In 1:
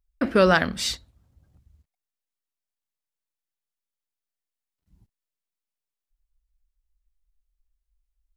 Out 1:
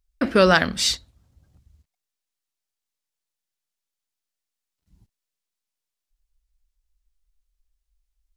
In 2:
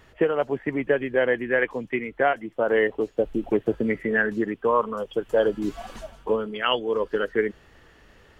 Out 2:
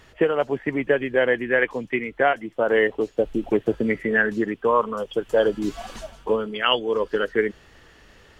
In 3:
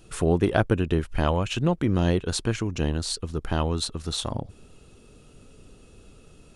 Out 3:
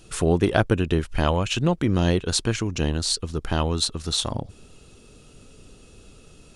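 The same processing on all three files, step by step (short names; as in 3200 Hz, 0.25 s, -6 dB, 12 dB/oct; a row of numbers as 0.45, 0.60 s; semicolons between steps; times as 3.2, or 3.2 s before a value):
bell 5500 Hz +5 dB 2.1 oct; gain +1.5 dB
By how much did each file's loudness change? +2.0, +2.0, +2.5 LU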